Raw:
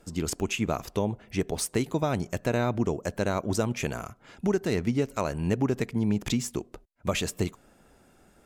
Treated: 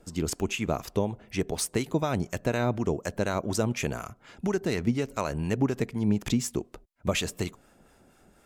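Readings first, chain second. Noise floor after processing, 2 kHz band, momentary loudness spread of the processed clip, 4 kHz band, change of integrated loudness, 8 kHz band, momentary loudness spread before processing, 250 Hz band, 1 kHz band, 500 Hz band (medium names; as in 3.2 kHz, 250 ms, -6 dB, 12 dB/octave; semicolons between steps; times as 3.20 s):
-61 dBFS, +0.5 dB, 7 LU, +0.5 dB, -0.5 dB, +0.5 dB, 6 LU, -0.5 dB, -0.5 dB, -0.5 dB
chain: harmonic tremolo 4.1 Hz, depth 50%, crossover 830 Hz; trim +2 dB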